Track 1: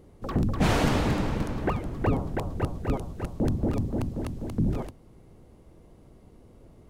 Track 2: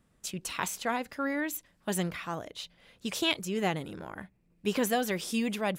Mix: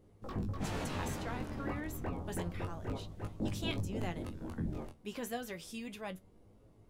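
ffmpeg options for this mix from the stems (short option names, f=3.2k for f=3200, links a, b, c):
-filter_complex "[0:a]alimiter=limit=-19.5dB:level=0:latency=1:release=211,flanger=delay=18.5:depth=4.6:speed=0.3,volume=-2.5dB[a];[1:a]adelay=400,volume=-8dB[b];[a][b]amix=inputs=2:normalize=0,flanger=delay=9.5:depth=4.1:regen=52:speed=0.3:shape=triangular"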